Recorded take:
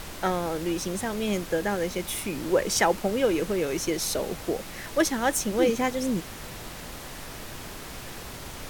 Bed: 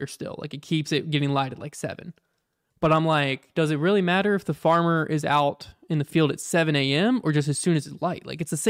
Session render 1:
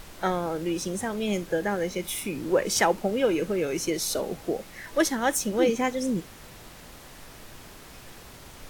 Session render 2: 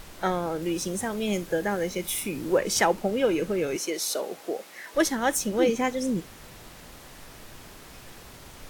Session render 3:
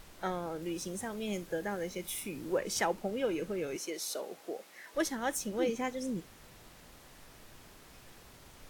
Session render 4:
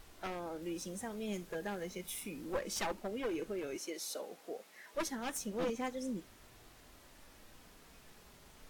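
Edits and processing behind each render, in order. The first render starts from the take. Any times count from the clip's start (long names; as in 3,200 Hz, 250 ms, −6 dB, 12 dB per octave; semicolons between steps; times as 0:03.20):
noise reduction from a noise print 7 dB
0:00.62–0:02.58: high-shelf EQ 7,600 Hz +4.5 dB; 0:03.76–0:04.95: high-pass filter 370 Hz
level −9 dB
wavefolder on the positive side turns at −28.5 dBFS; flanger 0.3 Hz, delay 2.6 ms, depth 2.4 ms, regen −51%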